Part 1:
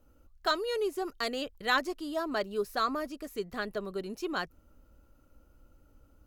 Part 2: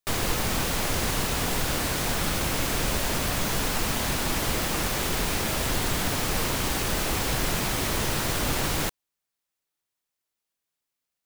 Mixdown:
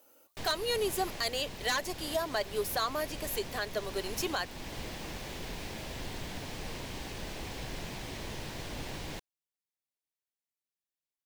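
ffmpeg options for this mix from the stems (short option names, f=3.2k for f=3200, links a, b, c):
-filter_complex "[0:a]highpass=590,highshelf=f=8k:g=9.5,aeval=exprs='0.224*sin(PI/2*2.24*val(0)/0.224)':c=same,volume=-2dB[a];[1:a]acrossover=split=6100[b][c];[c]acompressor=threshold=-42dB:ratio=4:attack=1:release=60[d];[b][d]amix=inputs=2:normalize=0,adelay=300,volume=-12.5dB[e];[a][e]amix=inputs=2:normalize=0,equalizer=f=1.3k:w=3.4:g=-8.5,alimiter=limit=-21.5dB:level=0:latency=1:release=402"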